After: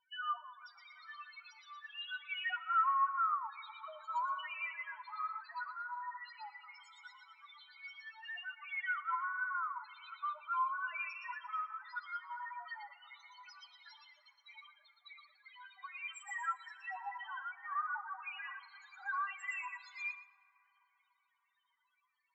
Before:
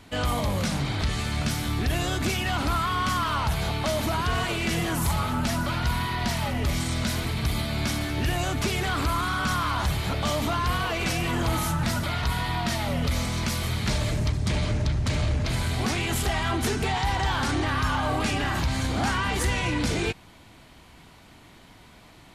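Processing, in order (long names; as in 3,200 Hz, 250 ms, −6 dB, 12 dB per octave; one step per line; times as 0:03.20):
low-pass filter 8,200 Hz 24 dB per octave
reverb reduction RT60 1.7 s
high-pass filter 980 Hz 24 dB per octave
spectral peaks only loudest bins 2
delay with a high-pass on its return 117 ms, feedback 32%, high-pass 3,400 Hz, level −3 dB
dense smooth reverb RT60 4.7 s, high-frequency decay 0.3×, DRR 11.5 dB
expander for the loud parts 1.5 to 1, over −55 dBFS
level +2.5 dB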